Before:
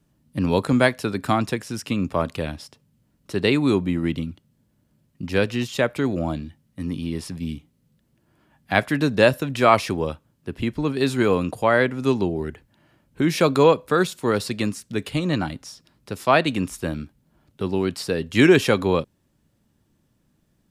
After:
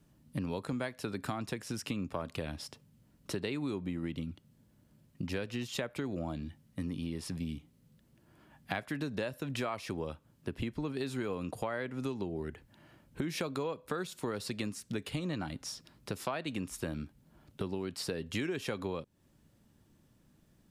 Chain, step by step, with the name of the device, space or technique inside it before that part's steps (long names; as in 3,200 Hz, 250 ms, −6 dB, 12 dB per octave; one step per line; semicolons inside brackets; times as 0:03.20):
serial compression, leveller first (downward compressor 2 to 1, threshold −22 dBFS, peak gain reduction 7.5 dB; downward compressor 4 to 1, threshold −35 dBFS, peak gain reduction 15.5 dB)